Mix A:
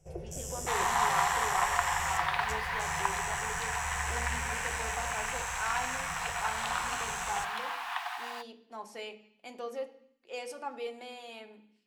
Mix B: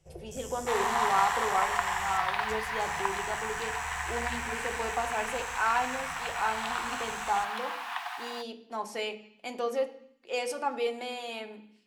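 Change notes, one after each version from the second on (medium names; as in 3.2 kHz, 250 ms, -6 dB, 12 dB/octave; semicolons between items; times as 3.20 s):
speech +8.0 dB; first sound -4.5 dB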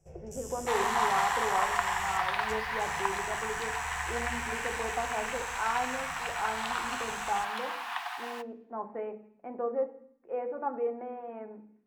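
speech: add Bessel low-pass 1 kHz, order 8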